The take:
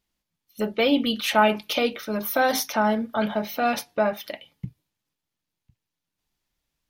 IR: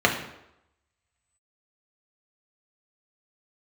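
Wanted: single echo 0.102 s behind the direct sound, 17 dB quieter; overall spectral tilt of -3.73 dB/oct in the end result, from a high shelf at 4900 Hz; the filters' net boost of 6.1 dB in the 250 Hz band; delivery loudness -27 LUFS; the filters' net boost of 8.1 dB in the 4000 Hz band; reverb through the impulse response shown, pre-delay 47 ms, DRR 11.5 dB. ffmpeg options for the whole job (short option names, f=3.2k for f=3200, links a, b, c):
-filter_complex "[0:a]equalizer=f=250:t=o:g=7,equalizer=f=4k:t=o:g=8.5,highshelf=f=4.9k:g=5.5,aecho=1:1:102:0.141,asplit=2[a][b];[1:a]atrim=start_sample=2205,adelay=47[c];[b][c]afir=irnorm=-1:irlink=0,volume=-30dB[d];[a][d]amix=inputs=2:normalize=0,volume=-7.5dB"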